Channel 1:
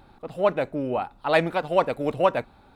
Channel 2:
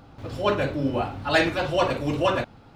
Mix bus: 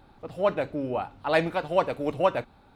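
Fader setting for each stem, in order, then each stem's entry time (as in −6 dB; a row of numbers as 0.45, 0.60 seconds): −3.0, −17.0 decibels; 0.00, 0.00 seconds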